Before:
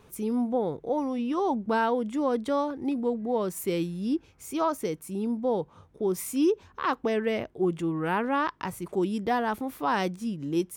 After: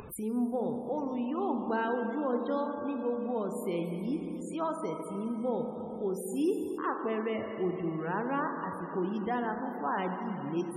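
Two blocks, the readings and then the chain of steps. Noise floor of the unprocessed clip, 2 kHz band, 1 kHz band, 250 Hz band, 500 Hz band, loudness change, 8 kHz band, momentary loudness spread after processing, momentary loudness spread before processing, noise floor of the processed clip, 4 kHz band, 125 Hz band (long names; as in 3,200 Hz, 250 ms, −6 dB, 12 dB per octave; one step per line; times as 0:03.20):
−58 dBFS, −5.5 dB, −5.0 dB, −4.5 dB, −4.5 dB, −4.5 dB, −8.5 dB, 5 LU, 6 LU, −40 dBFS, −10.5 dB, −4.0 dB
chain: four-comb reverb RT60 3.6 s, combs from 29 ms, DRR 3 dB
spectral peaks only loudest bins 64
upward compression, threshold −27 dBFS
level −6.5 dB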